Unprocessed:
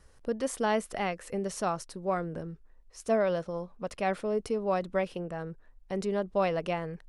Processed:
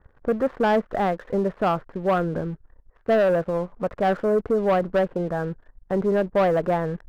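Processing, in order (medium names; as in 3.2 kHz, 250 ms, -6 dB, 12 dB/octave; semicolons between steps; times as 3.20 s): Chebyshev low-pass 1.7 kHz, order 4; waveshaping leveller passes 2; trim +3.5 dB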